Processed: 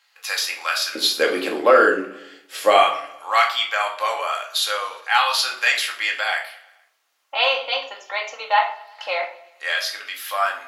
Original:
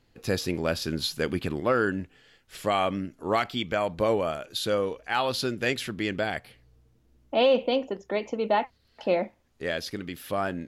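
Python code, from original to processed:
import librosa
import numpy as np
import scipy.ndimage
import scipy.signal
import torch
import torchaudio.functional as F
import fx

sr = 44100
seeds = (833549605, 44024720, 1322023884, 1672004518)

y = fx.highpass(x, sr, hz=fx.steps((0.0, 1000.0), (0.95, 400.0), (2.8, 890.0)), slope=24)
y = fx.echo_feedback(y, sr, ms=117, feedback_pct=59, wet_db=-22.5)
y = fx.room_shoebox(y, sr, seeds[0], volume_m3=440.0, walls='furnished', distance_m=2.2)
y = y * librosa.db_to_amplitude(8.5)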